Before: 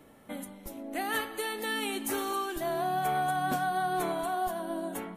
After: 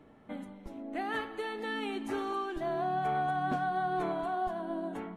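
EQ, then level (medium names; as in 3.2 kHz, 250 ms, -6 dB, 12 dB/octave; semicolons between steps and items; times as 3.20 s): tape spacing loss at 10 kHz 23 dB; band-stop 540 Hz, Q 12; 0.0 dB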